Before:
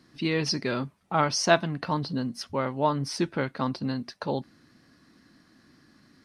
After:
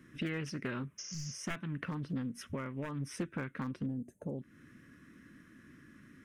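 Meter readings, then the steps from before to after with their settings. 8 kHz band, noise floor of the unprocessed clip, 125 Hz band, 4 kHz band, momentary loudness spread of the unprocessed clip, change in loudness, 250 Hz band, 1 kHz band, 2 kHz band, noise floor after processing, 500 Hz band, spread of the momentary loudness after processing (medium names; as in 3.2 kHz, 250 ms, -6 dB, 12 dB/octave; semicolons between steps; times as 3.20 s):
-10.5 dB, -61 dBFS, -7.5 dB, -16.0 dB, 9 LU, -12.0 dB, -8.5 dB, -19.5 dB, -11.5 dB, -61 dBFS, -16.5 dB, 19 LU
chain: one-sided wavefolder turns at -16.5 dBFS; spectral replace 1.02–1.35 s, 250–6900 Hz after; compression 5:1, threshold -36 dBFS, peak gain reduction 17 dB; time-frequency box 3.86–4.40 s, 900–6200 Hz -25 dB; static phaser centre 1.9 kHz, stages 4; loudspeaker Doppler distortion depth 0.4 ms; trim +3 dB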